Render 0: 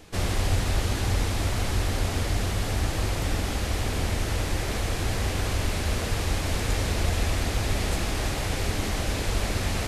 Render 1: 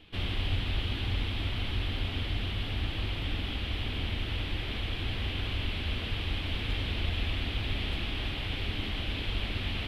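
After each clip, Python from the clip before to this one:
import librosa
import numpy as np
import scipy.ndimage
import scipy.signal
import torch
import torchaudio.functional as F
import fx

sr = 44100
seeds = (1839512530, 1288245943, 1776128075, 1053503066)

y = fx.curve_eq(x, sr, hz=(110.0, 160.0, 270.0, 520.0, 1800.0, 3200.0, 6600.0, 14000.0), db=(0, -3, 1, -7, -2, 10, -22, -14))
y = y * 10.0 ** (-6.0 / 20.0)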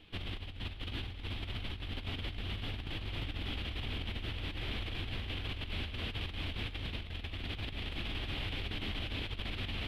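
y = fx.over_compress(x, sr, threshold_db=-33.0, ratio=-0.5)
y = y * 10.0 ** (-5.0 / 20.0)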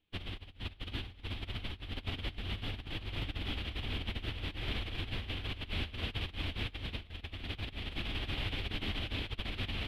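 y = fx.upward_expand(x, sr, threshold_db=-53.0, expansion=2.5)
y = y * 10.0 ** (4.0 / 20.0)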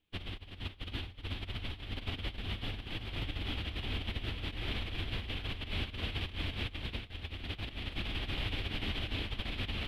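y = x + 10.0 ** (-9.0 / 20.0) * np.pad(x, (int(372 * sr / 1000.0), 0))[:len(x)]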